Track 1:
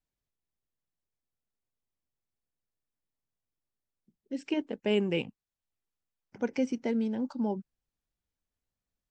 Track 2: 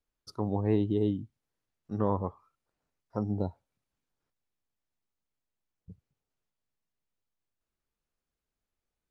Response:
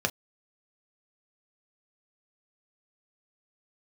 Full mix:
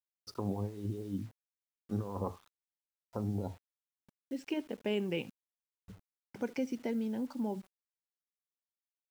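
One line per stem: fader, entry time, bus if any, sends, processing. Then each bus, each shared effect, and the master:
+1.0 dB, 0.00 s, no send, echo send −23 dB, noise gate with hold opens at −59 dBFS; downward compressor 1.5 to 1, threshold −43 dBFS, peak gain reduction 7.5 dB
−6.5 dB, 0.00 s, send −12.5 dB, echo send −19 dB, compressor whose output falls as the input rises −32 dBFS, ratio −0.5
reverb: on, pre-delay 3 ms
echo: single-tap delay 73 ms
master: bit reduction 10 bits

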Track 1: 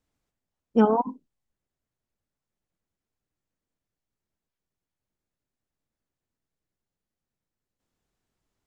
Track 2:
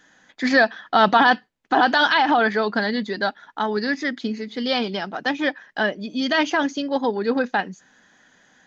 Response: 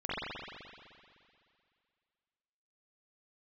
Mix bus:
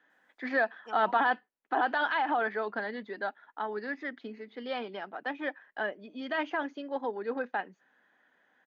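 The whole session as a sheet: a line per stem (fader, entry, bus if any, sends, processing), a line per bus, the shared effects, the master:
−2.0 dB, 0.10 s, no send, high-pass filter 1,100 Hz 12 dB per octave; high-shelf EQ 4,000 Hz +7.5 dB; automatic ducking −17 dB, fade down 1.75 s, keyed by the second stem
−10.0 dB, 0.00 s, no send, three-way crossover with the lows and the highs turned down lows −16 dB, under 280 Hz, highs −22 dB, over 3,000 Hz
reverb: not used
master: high-shelf EQ 5,000 Hz −4.5 dB

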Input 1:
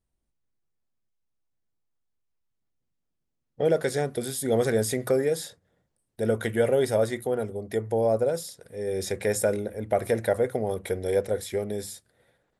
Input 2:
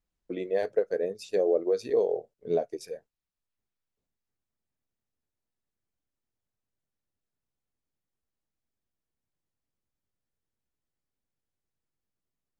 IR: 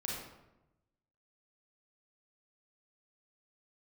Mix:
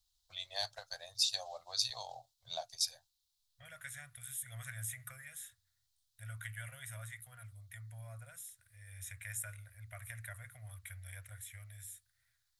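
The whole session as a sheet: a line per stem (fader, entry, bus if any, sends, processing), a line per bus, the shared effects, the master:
−10.5 dB, 0.00 s, no send, high-shelf EQ 4,600 Hz +5.5 dB; phaser with its sweep stopped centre 2,000 Hz, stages 4
0.0 dB, 0.00 s, no send, high shelf with overshoot 2,900 Hz +10.5 dB, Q 3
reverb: not used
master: elliptic band-stop filter 110–800 Hz, stop band 40 dB; parametric band 340 Hz −11 dB 0.33 octaves

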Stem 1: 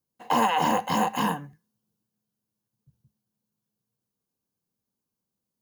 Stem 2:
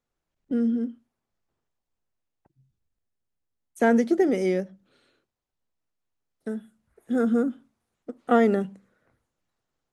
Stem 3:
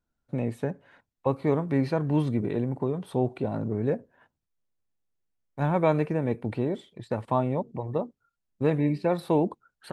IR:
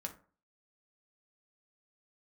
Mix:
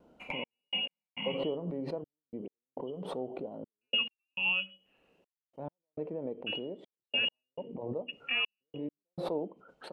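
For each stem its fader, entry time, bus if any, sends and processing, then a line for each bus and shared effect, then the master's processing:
−1.0 dB, 0.00 s, bus A, send −3.5 dB, treble cut that deepens with the level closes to 730 Hz, closed at −24.5 dBFS; downward compressor 10 to 1, threshold −34 dBFS, peak gain reduction 13 dB
−3.0 dB, 0.00 s, bus A, send −18 dB, Butterworth low-pass 4,300 Hz; low-shelf EQ 180 Hz −7 dB
−1.5 dB, 0.00 s, no bus, send −9.5 dB, resonant band-pass 440 Hz, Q 3.3; background raised ahead of every attack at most 51 dB per second
bus A: 0.0 dB, voice inversion scrambler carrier 3,100 Hz; brickwall limiter −19.5 dBFS, peak gain reduction 8 dB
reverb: on, RT60 0.40 s, pre-delay 3 ms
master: graphic EQ with 15 bands 100 Hz −9 dB, 400 Hz −10 dB, 1,600 Hz −9 dB; gate pattern "xxx..x..xxx" 103 BPM −60 dB; pitch vibrato 0.67 Hz 12 cents

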